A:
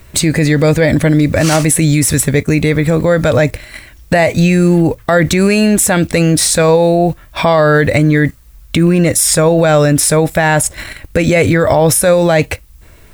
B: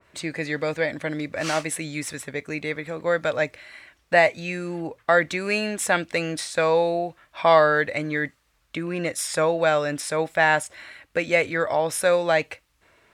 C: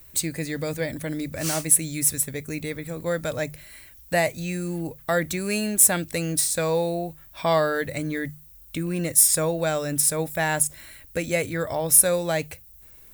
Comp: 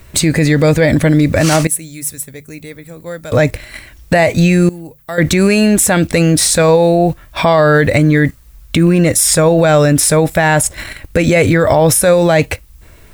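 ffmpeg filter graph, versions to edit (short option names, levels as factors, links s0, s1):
-filter_complex "[2:a]asplit=2[s0][s1];[0:a]asplit=3[s2][s3][s4];[s2]atrim=end=1.672[s5];[s0]atrim=start=1.668:end=3.322[s6];[s3]atrim=start=3.318:end=4.692[s7];[s1]atrim=start=4.688:end=5.182[s8];[s4]atrim=start=5.178[s9];[s5][s6]acrossfade=d=0.004:c1=hsin:c2=hsin[s10];[s10][s7]acrossfade=d=0.004:c1=hsin:c2=hsin[s11];[s11][s8]acrossfade=d=0.004:c1=hsin:c2=hsin[s12];[s12][s9]acrossfade=d=0.004:c1=hsin:c2=hsin"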